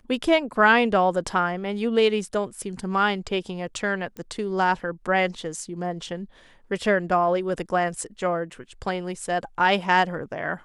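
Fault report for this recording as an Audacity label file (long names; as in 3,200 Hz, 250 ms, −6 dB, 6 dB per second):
4.170000	4.170000	click −22 dBFS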